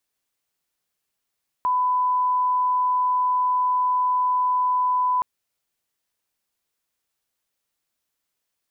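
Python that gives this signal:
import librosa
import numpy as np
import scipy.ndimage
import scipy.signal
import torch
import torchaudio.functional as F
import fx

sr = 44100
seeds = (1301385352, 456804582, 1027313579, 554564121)

y = fx.lineup_tone(sr, length_s=3.57, level_db=-18.0)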